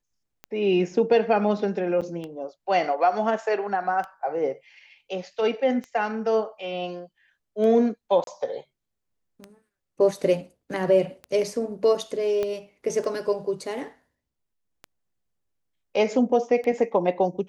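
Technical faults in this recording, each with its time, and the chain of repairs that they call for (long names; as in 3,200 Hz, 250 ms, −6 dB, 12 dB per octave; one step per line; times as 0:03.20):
scratch tick 33 1/3 rpm −22 dBFS
0:02.01–0:02.02: drop-out 6.9 ms
0:08.24–0:08.27: drop-out 32 ms
0:12.43: click −16 dBFS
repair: click removal
repair the gap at 0:02.01, 6.9 ms
repair the gap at 0:08.24, 32 ms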